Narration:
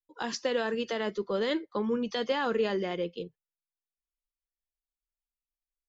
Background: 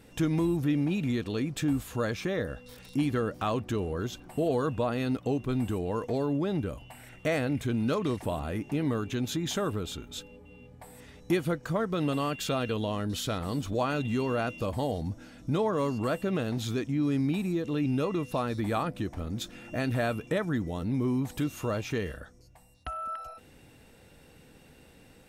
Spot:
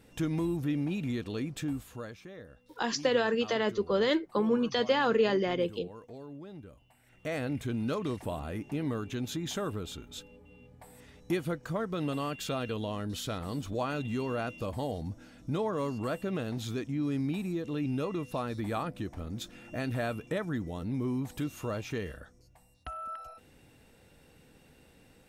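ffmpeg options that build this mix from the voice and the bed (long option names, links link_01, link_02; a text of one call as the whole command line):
ffmpeg -i stem1.wav -i stem2.wav -filter_complex "[0:a]adelay=2600,volume=2.5dB[link_01];[1:a]volume=8.5dB,afade=type=out:start_time=1.47:duration=0.73:silence=0.237137,afade=type=in:start_time=7.04:duration=0.41:silence=0.237137[link_02];[link_01][link_02]amix=inputs=2:normalize=0" out.wav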